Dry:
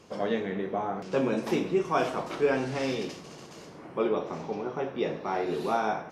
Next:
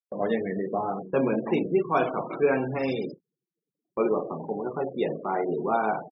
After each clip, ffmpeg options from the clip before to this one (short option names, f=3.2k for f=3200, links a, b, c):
-af "afftfilt=real='re*gte(hypot(re,im),0.0251)':imag='im*gte(hypot(re,im),0.0251)':win_size=1024:overlap=0.75,agate=range=-40dB:threshold=-40dB:ratio=16:detection=peak,volume=2.5dB"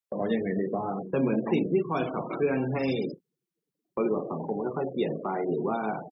-filter_complex "[0:a]acrossover=split=320|3000[a][b][c];[b]acompressor=threshold=-33dB:ratio=4[d];[a][d][c]amix=inputs=3:normalize=0,volume=2.5dB"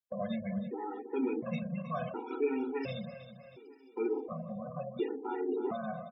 -af "aecho=1:1:318|636|954|1272|1590:0.251|0.123|0.0603|0.0296|0.0145,afftfilt=real='re*gt(sin(2*PI*0.7*pts/sr)*(1-2*mod(floor(b*sr/1024/250),2)),0)':imag='im*gt(sin(2*PI*0.7*pts/sr)*(1-2*mod(floor(b*sr/1024/250),2)),0)':win_size=1024:overlap=0.75,volume=-4.5dB"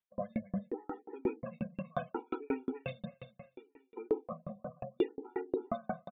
-af "aresample=8000,aresample=44100,aeval=exprs='val(0)*pow(10,-40*if(lt(mod(5.6*n/s,1),2*abs(5.6)/1000),1-mod(5.6*n/s,1)/(2*abs(5.6)/1000),(mod(5.6*n/s,1)-2*abs(5.6)/1000)/(1-2*abs(5.6)/1000))/20)':c=same,volume=6.5dB"